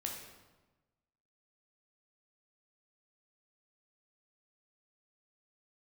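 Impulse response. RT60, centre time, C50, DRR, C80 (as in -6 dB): 1.2 s, 46 ms, 3.5 dB, 0.0 dB, 6.0 dB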